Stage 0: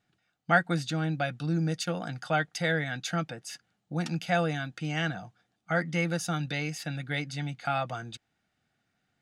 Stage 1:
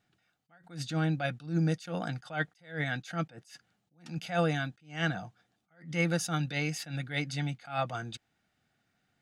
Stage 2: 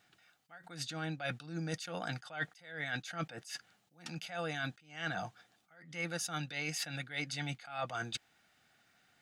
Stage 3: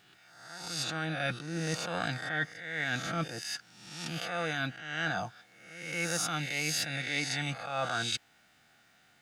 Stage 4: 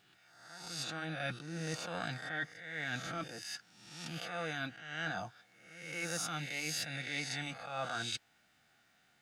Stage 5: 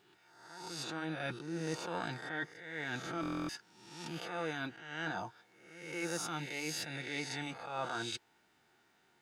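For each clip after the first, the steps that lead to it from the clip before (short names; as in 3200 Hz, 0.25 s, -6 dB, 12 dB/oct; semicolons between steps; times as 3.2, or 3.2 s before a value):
attack slew limiter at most 160 dB/s; gain +1 dB
low shelf 430 Hz -11.5 dB; reverse; compressor 6:1, threshold -45 dBFS, peak gain reduction 17 dB; reverse; gain +9 dB
spectral swells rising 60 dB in 0.94 s; gain +3 dB
flange 0.71 Hz, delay 0.2 ms, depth 5.2 ms, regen -73%; gain -1.5 dB
small resonant body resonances 380/920 Hz, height 14 dB, ringing for 30 ms; stuck buffer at 3.21, samples 1024, times 11; gain -2.5 dB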